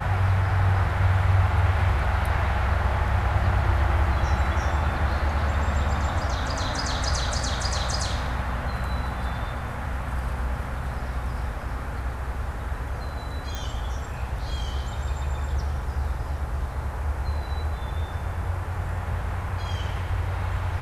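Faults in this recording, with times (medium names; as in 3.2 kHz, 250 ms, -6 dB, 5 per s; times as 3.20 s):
13.55 s: pop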